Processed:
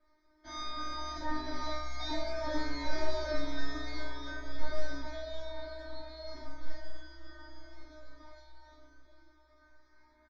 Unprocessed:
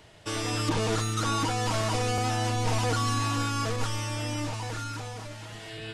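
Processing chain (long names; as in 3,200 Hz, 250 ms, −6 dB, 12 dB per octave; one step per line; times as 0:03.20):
source passing by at 0:01.56, 7 m/s, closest 4.2 metres
parametric band 330 Hz −6.5 dB 2.3 octaves
leveller curve on the samples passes 1
Butterworth band-reject 4,900 Hz, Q 3.6
high-frequency loss of the air 52 metres
tuned comb filter 530 Hz, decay 0.31 s, harmonics all, mix 100%
slap from a distant wall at 140 metres, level −16 dB
wrong playback speed 78 rpm record played at 45 rpm
comb filter 3.1 ms, depth 82%
level +12 dB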